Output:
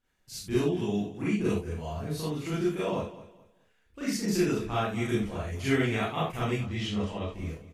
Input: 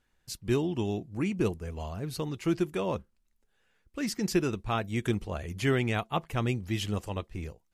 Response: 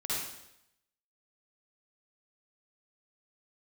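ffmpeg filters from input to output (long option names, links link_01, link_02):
-filter_complex "[0:a]asettb=1/sr,asplit=3[link_01][link_02][link_03];[link_01]atrim=end=6.534[link_04];[link_02]atrim=start=6.53:end=7.29,asetpts=PTS-STARTPTS,afade=type=in:duration=0.004:curve=qsin,afade=type=out:start_time=0.756:duration=0.004:curve=qsin,lowpass=5300[link_05];[link_03]atrim=start=7.286[link_06];[link_04][link_05]acrossfade=duration=0.004:curve1=hsin:curve2=qsin[link_07];[link_07][link_06]acrossfade=duration=0.004:curve1=qsin:curve2=hsin,aecho=1:1:213|426|639:0.158|0.046|0.0133[link_08];[1:a]atrim=start_sample=2205,afade=type=out:start_time=0.27:duration=0.01,atrim=end_sample=12348,asetrate=70560,aresample=44100[link_09];[link_08][link_09]afir=irnorm=-1:irlink=0"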